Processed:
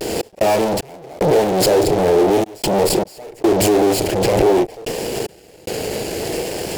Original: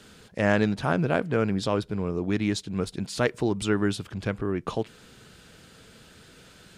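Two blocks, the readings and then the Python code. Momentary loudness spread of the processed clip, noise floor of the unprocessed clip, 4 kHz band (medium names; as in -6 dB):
11 LU, -53 dBFS, +12.5 dB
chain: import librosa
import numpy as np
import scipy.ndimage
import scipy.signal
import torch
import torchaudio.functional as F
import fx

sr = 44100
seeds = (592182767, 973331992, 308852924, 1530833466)

y = fx.lower_of_two(x, sr, delay_ms=0.4)
y = fx.doubler(y, sr, ms=37.0, db=-9.0)
y = fx.fuzz(y, sr, gain_db=49.0, gate_db=-57.0)
y = fx.high_shelf(y, sr, hz=4200.0, db=5.5)
y = fx.step_gate(y, sr, bpm=74, pattern='x.xx..xxxxx', floor_db=-60.0, edge_ms=4.5)
y = fx.band_shelf(y, sr, hz=520.0, db=14.0, octaves=1.7)
y = fx.vibrato(y, sr, rate_hz=0.47, depth_cents=44.0)
y = fx.pre_swell(y, sr, db_per_s=28.0)
y = y * librosa.db_to_amplitude(-10.5)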